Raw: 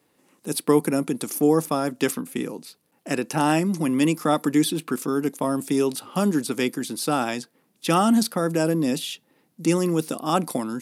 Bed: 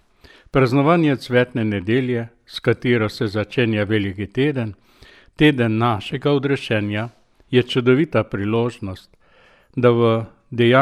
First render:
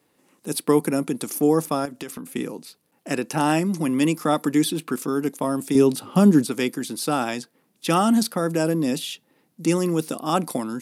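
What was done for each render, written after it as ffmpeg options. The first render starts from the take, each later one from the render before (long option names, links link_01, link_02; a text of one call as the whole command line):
ffmpeg -i in.wav -filter_complex "[0:a]asettb=1/sr,asplit=3[link_01][link_02][link_03];[link_01]atrim=end=1.854[link_04];[link_02]atrim=start=1.85:end=2.33,asetpts=PTS-STARTPTS,afade=type=in:duration=0.004:curve=qsin,afade=type=out:start_time=0.476:duration=0.004:curve=qsin,acompressor=threshold=-30dB:ratio=6:attack=3.2:release=140:knee=1:detection=peak[link_05];[link_03]atrim=start=2.326[link_06];[link_04][link_05]acrossfade=duration=0.004:curve1=hsin:curve2=qsin[link_07];[link_07][link_06]acrossfade=duration=0.004:curve1=qsin:curve2=hsin,asettb=1/sr,asplit=3[link_08][link_09][link_10];[link_08]atrim=end=5.754[link_11];[link_09]atrim=start=5.75:end=6.46,asetpts=PTS-STARTPTS,afade=type=in:duration=0.004:curve=qsin,afade=type=out:start_time=0.706:duration=0.004:curve=qsin,lowshelf=frequency=400:gain=10[link_12];[link_10]atrim=start=6.456[link_13];[link_11][link_12]acrossfade=duration=0.004:curve1=hsin:curve2=qsin[link_14];[link_14][link_13]acrossfade=duration=0.004:curve1=qsin:curve2=hsin" out.wav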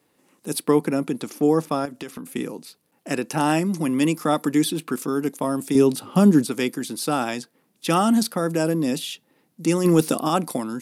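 ffmpeg -i in.wav -filter_complex "[0:a]asettb=1/sr,asplit=3[link_01][link_02][link_03];[link_01]atrim=end=0.644[link_04];[link_02]atrim=start=0.64:end=2.15,asetpts=PTS-STARTPTS,afade=type=in:duration=0.004:curve=qsin,afade=type=out:start_time=1.506:duration=0.004:curve=qsin,acrossover=split=5300[link_05][link_06];[link_06]acompressor=threshold=-44dB:ratio=4:attack=1:release=60[link_07];[link_05][link_07]amix=inputs=2:normalize=0[link_08];[link_03]atrim=start=2.146[link_09];[link_04][link_08]acrossfade=duration=0.004:curve1=hsin:curve2=qsin[link_10];[link_10][link_09]acrossfade=duration=0.004:curve1=qsin:curve2=hsin,asplit=3[link_11][link_12][link_13];[link_11]afade=type=out:start_time=9.84:duration=0.02[link_14];[link_12]acontrast=74,afade=type=in:start_time=9.84:duration=0.02,afade=type=out:start_time=10.27:duration=0.02[link_15];[link_13]afade=type=in:start_time=10.27:duration=0.02[link_16];[link_14][link_15][link_16]amix=inputs=3:normalize=0" out.wav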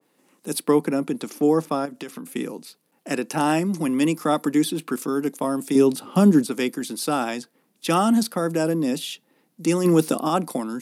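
ffmpeg -i in.wav -af "highpass=frequency=150:width=0.5412,highpass=frequency=150:width=1.3066,adynamicequalizer=threshold=0.0224:dfrequency=1600:dqfactor=0.7:tfrequency=1600:tqfactor=0.7:attack=5:release=100:ratio=0.375:range=2:mode=cutabove:tftype=highshelf" out.wav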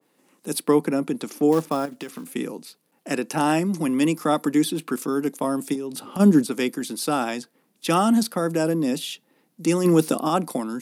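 ffmpeg -i in.wav -filter_complex "[0:a]asettb=1/sr,asplit=3[link_01][link_02][link_03];[link_01]atrim=end=1.524[link_04];[link_02]atrim=start=1.52:end=2.35,asetpts=PTS-STARTPTS,afade=type=in:duration=0.004:curve=qsin,afade=type=out:start_time=0.826:duration=0.004:curve=qsin,acrusher=bits=5:mode=log:mix=0:aa=0.000001[link_05];[link_03]atrim=start=2.346[link_06];[link_04][link_05]acrossfade=duration=0.004:curve1=hsin:curve2=qsin[link_07];[link_07][link_06]acrossfade=duration=0.004:curve1=qsin:curve2=hsin,asplit=3[link_08][link_09][link_10];[link_08]afade=type=out:start_time=5.73:duration=0.02[link_11];[link_09]acompressor=threshold=-26dB:ratio=12:attack=3.2:release=140:knee=1:detection=peak,afade=type=in:start_time=5.73:duration=0.02,afade=type=out:start_time=6.19:duration=0.02[link_12];[link_10]afade=type=in:start_time=6.19:duration=0.02[link_13];[link_11][link_12][link_13]amix=inputs=3:normalize=0" out.wav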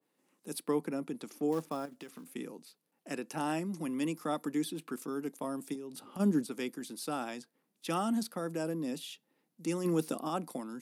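ffmpeg -i in.wav -af "volume=-13dB" out.wav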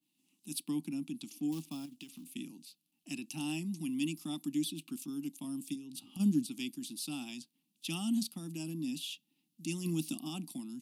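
ffmpeg -i in.wav -af "firequalizer=gain_entry='entry(300,0);entry(460,-30);entry(770,-13);entry(1600,-22);entry(2700,5);entry(5400,2)':delay=0.05:min_phase=1" out.wav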